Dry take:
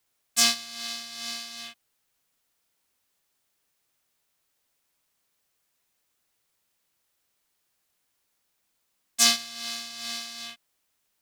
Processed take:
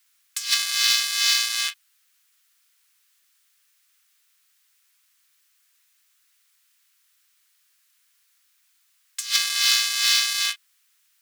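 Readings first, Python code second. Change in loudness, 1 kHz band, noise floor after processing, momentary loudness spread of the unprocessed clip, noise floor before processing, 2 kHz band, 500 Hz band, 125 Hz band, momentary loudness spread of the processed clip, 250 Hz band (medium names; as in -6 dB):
+5.5 dB, +1.5 dB, -66 dBFS, 18 LU, -76 dBFS, +8.5 dB, under -10 dB, no reading, 14 LU, under -40 dB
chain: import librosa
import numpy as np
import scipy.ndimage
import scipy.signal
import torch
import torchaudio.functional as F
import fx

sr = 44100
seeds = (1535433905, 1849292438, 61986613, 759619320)

p1 = fx.fuzz(x, sr, gain_db=37.0, gate_db=-33.0)
p2 = x + (p1 * librosa.db_to_amplitude(-10.0))
p3 = scipy.signal.sosfilt(scipy.signal.butter(4, 1300.0, 'highpass', fs=sr, output='sos'), p2)
p4 = fx.over_compress(p3, sr, threshold_db=-25.0, ratio=-0.5)
y = p4 * librosa.db_to_amplitude(6.5)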